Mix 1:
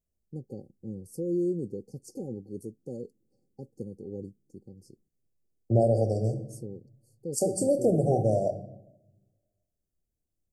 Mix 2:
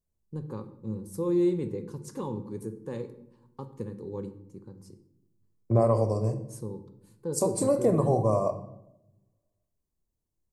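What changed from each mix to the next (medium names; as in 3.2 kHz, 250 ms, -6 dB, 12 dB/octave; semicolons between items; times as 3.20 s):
first voice: send on; master: remove brick-wall FIR band-stop 800–4300 Hz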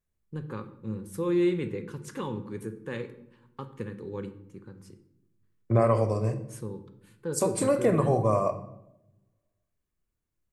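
master: add high-order bell 2.1 kHz +12.5 dB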